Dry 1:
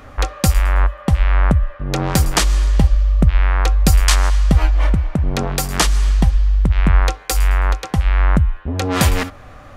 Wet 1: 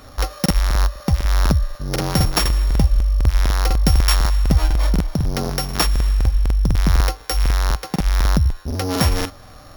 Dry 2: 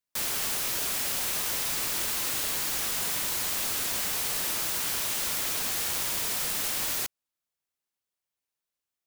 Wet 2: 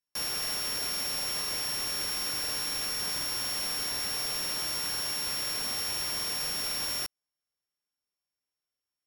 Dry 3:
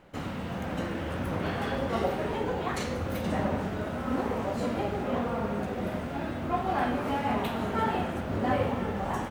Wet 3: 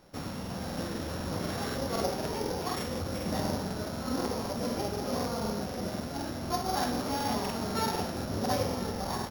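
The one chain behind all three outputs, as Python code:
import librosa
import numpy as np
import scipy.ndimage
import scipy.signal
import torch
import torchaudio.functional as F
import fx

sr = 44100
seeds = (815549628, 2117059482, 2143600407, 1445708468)

y = np.r_[np.sort(x[:len(x) // 8 * 8].reshape(-1, 8), axis=1).ravel(), x[len(x) // 8 * 8:]]
y = fx.buffer_crackle(y, sr, first_s=0.41, period_s=0.25, block=2048, kind='repeat')
y = F.gain(torch.from_numpy(y), -2.5).numpy()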